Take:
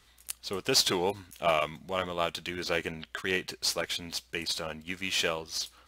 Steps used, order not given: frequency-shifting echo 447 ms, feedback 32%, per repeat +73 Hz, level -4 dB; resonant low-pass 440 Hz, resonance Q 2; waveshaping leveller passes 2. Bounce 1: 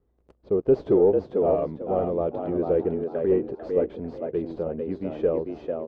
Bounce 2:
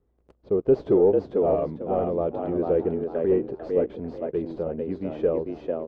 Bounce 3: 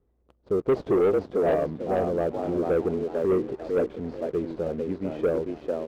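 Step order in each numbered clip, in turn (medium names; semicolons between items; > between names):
waveshaping leveller > frequency-shifting echo > resonant low-pass; frequency-shifting echo > waveshaping leveller > resonant low-pass; frequency-shifting echo > resonant low-pass > waveshaping leveller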